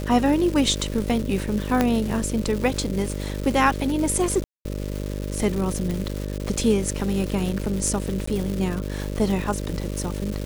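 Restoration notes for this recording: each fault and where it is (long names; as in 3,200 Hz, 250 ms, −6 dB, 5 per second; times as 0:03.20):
mains buzz 50 Hz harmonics 12 −29 dBFS
surface crackle 460 per second −28 dBFS
0:01.81: click −6 dBFS
0:04.44–0:04.65: drop-out 210 ms
0:05.91: click
0:08.26–0:08.27: drop-out 14 ms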